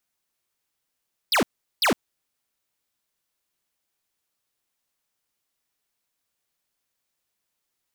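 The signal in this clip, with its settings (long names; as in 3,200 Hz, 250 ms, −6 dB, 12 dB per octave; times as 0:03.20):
repeated falling chirps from 5,400 Hz, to 180 Hz, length 0.11 s square, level −19.5 dB, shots 2, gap 0.39 s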